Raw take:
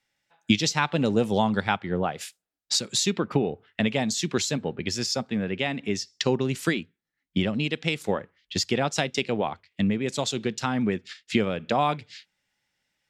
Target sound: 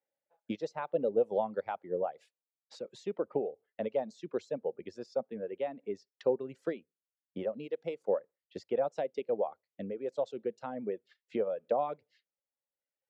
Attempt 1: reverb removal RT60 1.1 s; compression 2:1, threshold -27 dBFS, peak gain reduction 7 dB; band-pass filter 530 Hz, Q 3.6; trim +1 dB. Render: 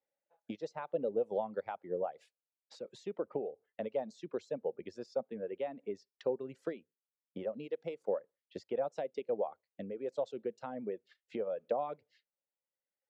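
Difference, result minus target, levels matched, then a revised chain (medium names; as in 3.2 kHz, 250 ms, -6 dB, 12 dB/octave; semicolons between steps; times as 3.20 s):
compression: peak gain reduction +7 dB
reverb removal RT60 1.1 s; band-pass filter 530 Hz, Q 3.6; trim +1 dB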